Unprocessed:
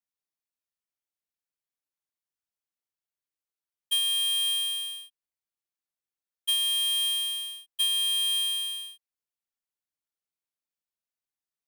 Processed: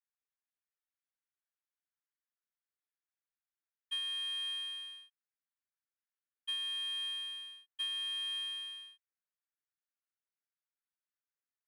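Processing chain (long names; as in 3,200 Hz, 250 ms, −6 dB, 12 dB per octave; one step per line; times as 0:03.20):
resonant band-pass 1,600 Hz, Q 2.2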